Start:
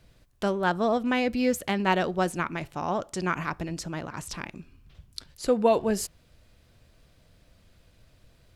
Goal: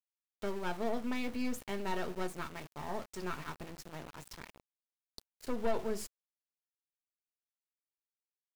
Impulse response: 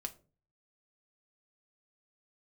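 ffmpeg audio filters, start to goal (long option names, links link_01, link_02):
-filter_complex "[0:a]aeval=exprs='(tanh(11.2*val(0)+0.65)-tanh(0.65))/11.2':channel_layout=same[link_01];[1:a]atrim=start_sample=2205,asetrate=79380,aresample=44100[link_02];[link_01][link_02]afir=irnorm=-1:irlink=0,aeval=exprs='val(0)*gte(abs(val(0)),0.00631)':channel_layout=same,volume=-1.5dB"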